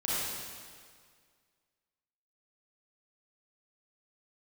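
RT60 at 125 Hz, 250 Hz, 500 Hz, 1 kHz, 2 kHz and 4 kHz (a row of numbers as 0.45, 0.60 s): 2.0, 1.9, 1.9, 1.9, 1.8, 1.7 s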